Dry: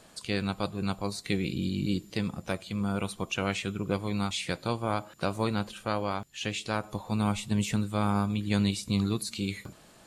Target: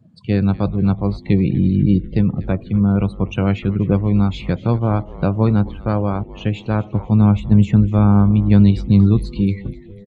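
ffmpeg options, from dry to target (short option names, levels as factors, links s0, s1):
-filter_complex "[0:a]highpass=f=90:w=0.5412,highpass=f=90:w=1.3066,aemphasis=mode=reproduction:type=bsi,afftdn=nr=23:nf=-43,tiltshelf=f=850:g=3.5,asplit=2[s0][s1];[s1]asplit=4[s2][s3][s4][s5];[s2]adelay=246,afreqshift=-150,volume=0.141[s6];[s3]adelay=492,afreqshift=-300,volume=0.0692[s7];[s4]adelay=738,afreqshift=-450,volume=0.0339[s8];[s5]adelay=984,afreqshift=-600,volume=0.0166[s9];[s6][s7][s8][s9]amix=inputs=4:normalize=0[s10];[s0][s10]amix=inputs=2:normalize=0,volume=2"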